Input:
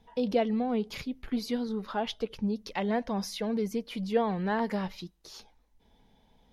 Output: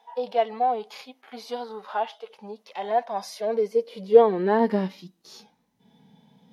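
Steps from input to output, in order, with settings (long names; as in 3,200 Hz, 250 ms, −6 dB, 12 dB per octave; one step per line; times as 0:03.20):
high-pass filter sweep 770 Hz → 160 Hz, 0:03.03–0:05.70
harmonic and percussive parts rebalanced percussive −18 dB
level +7.5 dB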